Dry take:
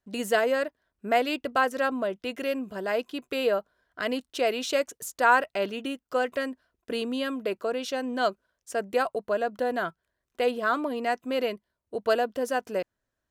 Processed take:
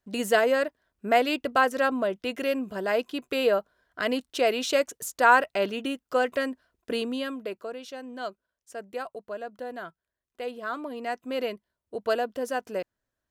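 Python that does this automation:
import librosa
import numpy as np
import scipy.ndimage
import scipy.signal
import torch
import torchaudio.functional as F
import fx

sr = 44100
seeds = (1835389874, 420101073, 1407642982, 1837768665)

y = fx.gain(x, sr, db=fx.line((6.91, 2.0), (7.83, -9.0), (10.45, -9.0), (11.41, -2.0)))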